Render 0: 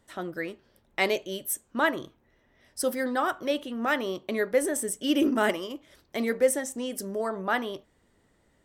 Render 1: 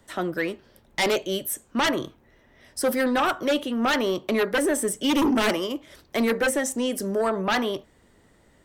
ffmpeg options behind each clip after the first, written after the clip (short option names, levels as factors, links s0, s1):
-filter_complex "[0:a]acrossover=split=160|540|3100[s0][s1][s2][s3];[s3]alimiter=level_in=1.33:limit=0.0631:level=0:latency=1:release=78,volume=0.75[s4];[s0][s1][s2][s4]amix=inputs=4:normalize=0,aeval=exprs='0.299*sin(PI/2*3.55*val(0)/0.299)':c=same,volume=0.447"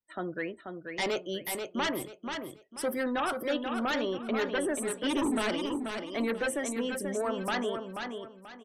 -filter_complex "[0:a]afftdn=nr=33:nf=-38,asplit=2[s0][s1];[s1]aecho=0:1:485|970|1455|1940:0.501|0.145|0.0421|0.0122[s2];[s0][s2]amix=inputs=2:normalize=0,volume=0.398"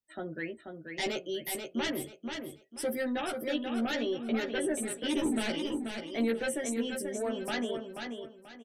-filter_complex "[0:a]equalizer=f=1100:w=2.2:g=-12.5,asplit=2[s0][s1];[s1]adelay=13,volume=0.708[s2];[s0][s2]amix=inputs=2:normalize=0,volume=0.794"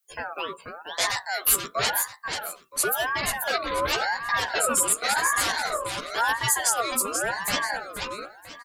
-af "crystalizer=i=3:c=0,aeval=exprs='val(0)*sin(2*PI*1100*n/s+1100*0.3/0.93*sin(2*PI*0.93*n/s))':c=same,volume=2.37"